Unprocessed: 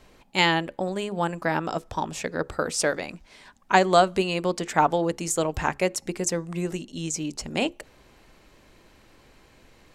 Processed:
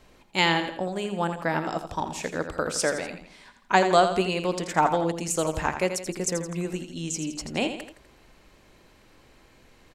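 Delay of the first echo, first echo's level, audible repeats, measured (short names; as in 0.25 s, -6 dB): 83 ms, -9.0 dB, 3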